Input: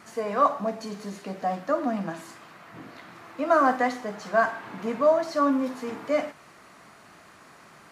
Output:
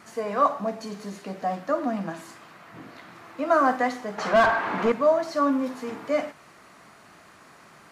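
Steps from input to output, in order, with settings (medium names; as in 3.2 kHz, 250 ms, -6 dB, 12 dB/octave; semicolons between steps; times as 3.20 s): 4.18–4.92 s: overdrive pedal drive 24 dB, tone 1.3 kHz, clips at -9.5 dBFS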